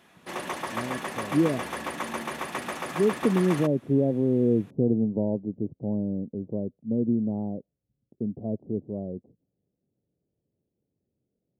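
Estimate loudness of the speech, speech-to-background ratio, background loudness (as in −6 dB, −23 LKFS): −27.5 LKFS, 6.0 dB, −33.5 LKFS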